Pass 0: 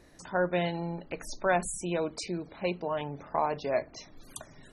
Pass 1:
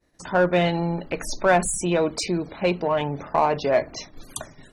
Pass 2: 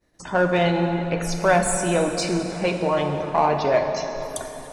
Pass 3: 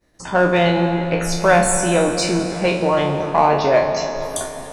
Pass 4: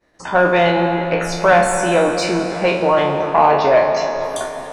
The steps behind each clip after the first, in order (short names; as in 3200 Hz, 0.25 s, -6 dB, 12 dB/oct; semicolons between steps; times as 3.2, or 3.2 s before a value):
expander -45 dBFS; in parallel at -3 dB: soft clip -29.5 dBFS, distortion -8 dB; on the sum: gain +6 dB
plate-style reverb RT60 3.7 s, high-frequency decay 0.7×, DRR 4 dB
spectral trails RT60 0.40 s; gain +3.5 dB
overdrive pedal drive 12 dB, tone 1800 Hz, clips at -1 dBFS